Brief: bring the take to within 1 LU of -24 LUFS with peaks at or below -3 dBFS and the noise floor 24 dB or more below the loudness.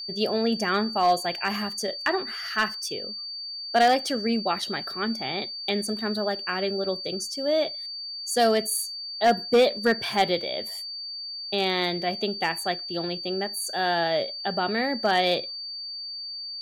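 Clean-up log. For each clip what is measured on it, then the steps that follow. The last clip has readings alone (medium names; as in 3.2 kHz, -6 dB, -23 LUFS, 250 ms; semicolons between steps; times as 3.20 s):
clipped samples 0.3%; clipping level -13.5 dBFS; steady tone 4.6 kHz; tone level -33 dBFS; loudness -26.0 LUFS; peak level -13.5 dBFS; loudness target -24.0 LUFS
-> clip repair -13.5 dBFS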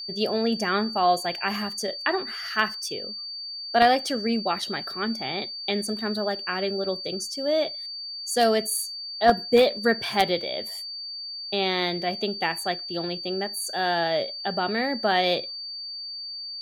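clipped samples 0.0%; steady tone 4.6 kHz; tone level -33 dBFS
-> band-stop 4.6 kHz, Q 30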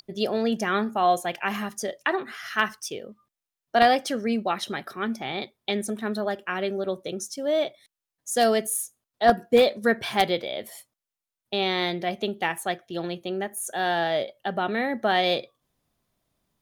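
steady tone not found; loudness -26.0 LUFS; peak level -4.0 dBFS; loudness target -24.0 LUFS
-> trim +2 dB; peak limiter -3 dBFS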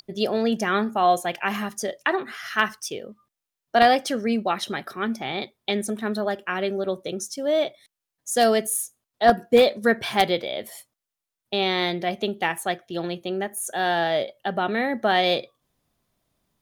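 loudness -24.0 LUFS; peak level -3.0 dBFS; noise floor -87 dBFS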